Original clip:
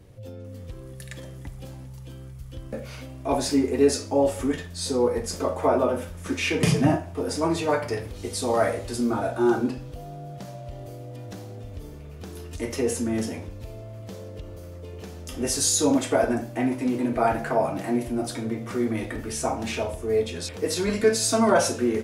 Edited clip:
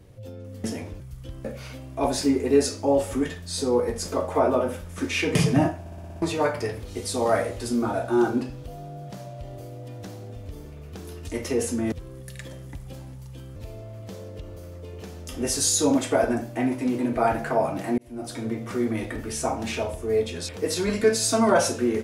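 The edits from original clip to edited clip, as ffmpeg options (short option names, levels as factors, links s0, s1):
-filter_complex "[0:a]asplit=13[s0][s1][s2][s3][s4][s5][s6][s7][s8][s9][s10][s11][s12];[s0]atrim=end=0.642[s13];[s1]atrim=start=13.198:end=13.562[s14];[s2]atrim=start=2.278:end=7.142[s15];[s3]atrim=start=7.078:end=7.142[s16];[s4]atrim=start=7.078:end=7.142[s17];[s5]atrim=start=7.078:end=7.142[s18];[s6]atrim=start=7.078:end=7.142[s19];[s7]atrim=start=7.078:end=7.142[s20];[s8]atrim=start=7.078:end=7.142[s21];[s9]atrim=start=7.498:end=13.202[s22];[s10]atrim=start=0.638:end=2.282[s23];[s11]atrim=start=13.558:end=17.98,asetpts=PTS-STARTPTS,afade=t=out:st=4.418:d=0.004:c=hsin[s24];[s12]atrim=start=17.98,asetpts=PTS-STARTPTS,afade=t=in:d=0.48[s25];[s13][s14]acrossfade=d=0.004:c1=hsin:c2=hsin[s26];[s26][s15]acrossfade=d=0.004:c1=hsin:c2=hsin[s27];[s27][s16]acrossfade=d=0.004:c1=hsin:c2=hsin[s28];[s28][s17]acrossfade=d=0.004:c1=hsin:c2=hsin[s29];[s29][s18]acrossfade=d=0.004:c1=hsin:c2=hsin[s30];[s30][s19]acrossfade=d=0.004:c1=hsin:c2=hsin[s31];[s31][s20]acrossfade=d=0.004:c1=hsin:c2=hsin[s32];[s32][s21]acrossfade=d=0.004:c1=hsin:c2=hsin[s33];[s33][s22]acrossfade=d=0.004:c1=hsin:c2=hsin[s34];[s34][s23]acrossfade=d=0.004:c1=hsin:c2=hsin[s35];[s24][s25]concat=n=2:v=0:a=1[s36];[s35][s36]acrossfade=d=0.004:c1=hsin:c2=hsin"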